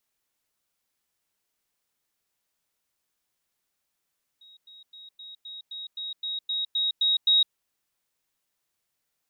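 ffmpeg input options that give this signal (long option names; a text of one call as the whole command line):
ffmpeg -f lavfi -i "aevalsrc='pow(10,(-49.5+3*floor(t/0.26))/20)*sin(2*PI*3790*t)*clip(min(mod(t,0.26),0.16-mod(t,0.26))/0.005,0,1)':duration=3.12:sample_rate=44100" out.wav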